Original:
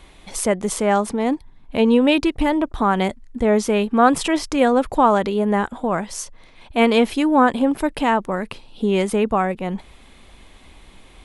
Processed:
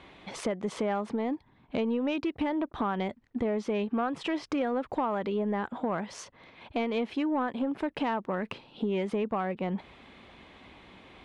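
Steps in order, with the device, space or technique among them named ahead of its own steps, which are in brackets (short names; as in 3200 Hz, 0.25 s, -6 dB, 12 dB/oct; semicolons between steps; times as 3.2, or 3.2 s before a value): AM radio (BPF 110–3200 Hz; compressor 6:1, threshold -25 dBFS, peak gain reduction 15.5 dB; soft clip -18.5 dBFS, distortion -22 dB); gain -1 dB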